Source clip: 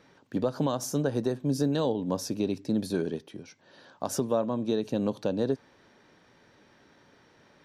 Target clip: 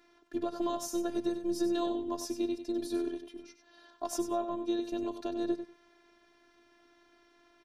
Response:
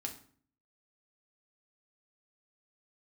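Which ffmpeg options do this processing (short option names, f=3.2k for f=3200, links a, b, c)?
-af "aecho=1:1:96|192:0.316|0.0538,afftfilt=real='hypot(re,im)*cos(PI*b)':imag='0':win_size=512:overlap=0.75,volume=-1dB"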